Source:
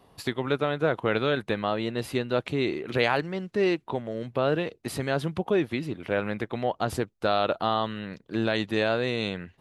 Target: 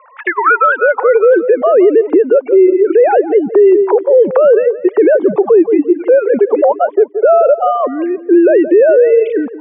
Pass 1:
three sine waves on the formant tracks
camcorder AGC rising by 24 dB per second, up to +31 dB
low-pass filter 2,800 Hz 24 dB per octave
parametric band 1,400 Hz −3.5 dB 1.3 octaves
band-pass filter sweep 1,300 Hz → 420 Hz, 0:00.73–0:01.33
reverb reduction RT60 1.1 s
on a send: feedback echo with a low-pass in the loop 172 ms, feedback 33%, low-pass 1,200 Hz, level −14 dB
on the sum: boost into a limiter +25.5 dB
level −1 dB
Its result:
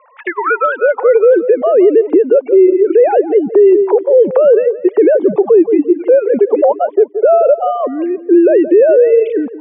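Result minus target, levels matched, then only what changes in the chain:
1,000 Hz band −3.0 dB
change: parametric band 1,400 Hz +3.5 dB 1.3 octaves

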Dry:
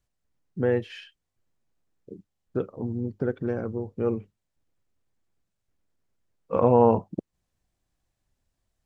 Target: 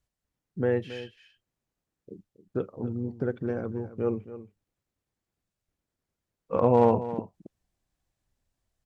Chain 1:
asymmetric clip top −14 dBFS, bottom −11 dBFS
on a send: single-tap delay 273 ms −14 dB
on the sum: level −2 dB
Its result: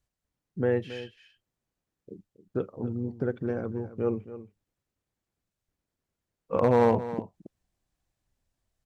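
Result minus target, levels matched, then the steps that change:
asymmetric clip: distortion +10 dB
change: asymmetric clip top −14 dBFS, bottom 0.5 dBFS

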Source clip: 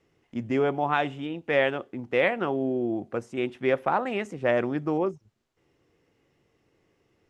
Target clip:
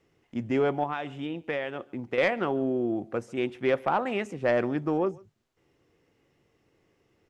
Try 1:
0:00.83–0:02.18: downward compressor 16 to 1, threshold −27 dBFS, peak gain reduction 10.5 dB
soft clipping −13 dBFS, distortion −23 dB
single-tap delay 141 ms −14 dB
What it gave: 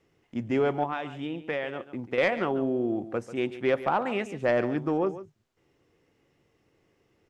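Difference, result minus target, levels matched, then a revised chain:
echo-to-direct +11 dB
0:00.83–0:02.18: downward compressor 16 to 1, threshold −27 dBFS, peak gain reduction 10.5 dB
soft clipping −13 dBFS, distortion −23 dB
single-tap delay 141 ms −25 dB

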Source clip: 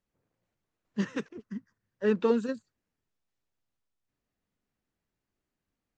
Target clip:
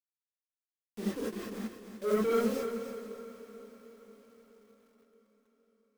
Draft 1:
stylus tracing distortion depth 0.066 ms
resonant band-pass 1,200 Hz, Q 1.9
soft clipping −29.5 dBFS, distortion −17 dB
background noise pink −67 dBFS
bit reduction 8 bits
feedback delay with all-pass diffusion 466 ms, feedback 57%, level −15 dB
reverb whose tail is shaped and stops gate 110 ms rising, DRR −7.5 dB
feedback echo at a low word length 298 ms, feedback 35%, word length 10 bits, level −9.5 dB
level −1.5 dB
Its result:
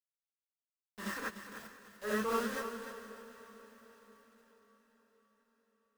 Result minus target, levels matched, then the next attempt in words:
1,000 Hz band +6.5 dB
stylus tracing distortion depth 0.066 ms
resonant band-pass 430 Hz, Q 1.9
soft clipping −29.5 dBFS, distortion −7 dB
background noise pink −67 dBFS
bit reduction 8 bits
feedback delay with all-pass diffusion 466 ms, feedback 57%, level −15 dB
reverb whose tail is shaped and stops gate 110 ms rising, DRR −7.5 dB
feedback echo at a low word length 298 ms, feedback 35%, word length 10 bits, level −9.5 dB
level −1.5 dB

